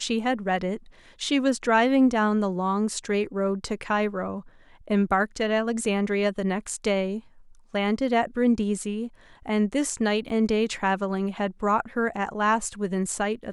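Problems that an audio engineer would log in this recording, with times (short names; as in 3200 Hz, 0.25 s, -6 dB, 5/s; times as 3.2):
10.29–10.3 gap 6.4 ms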